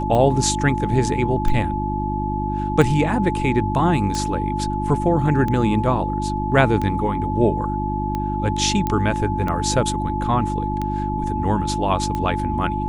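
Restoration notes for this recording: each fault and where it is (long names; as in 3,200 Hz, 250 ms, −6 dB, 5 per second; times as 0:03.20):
mains hum 50 Hz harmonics 7 −25 dBFS
scratch tick 45 rpm −13 dBFS
whistle 860 Hz −25 dBFS
0:08.87: click −10 dBFS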